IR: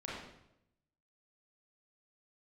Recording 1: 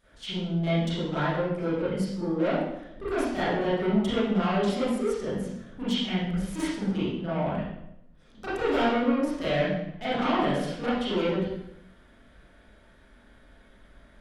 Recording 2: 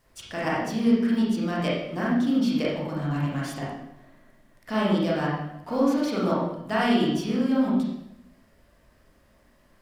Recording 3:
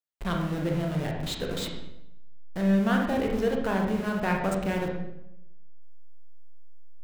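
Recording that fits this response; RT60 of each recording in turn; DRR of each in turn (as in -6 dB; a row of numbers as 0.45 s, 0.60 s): 2; 0.80 s, 0.80 s, 0.80 s; -13.0 dB, -6.5 dB, 0.0 dB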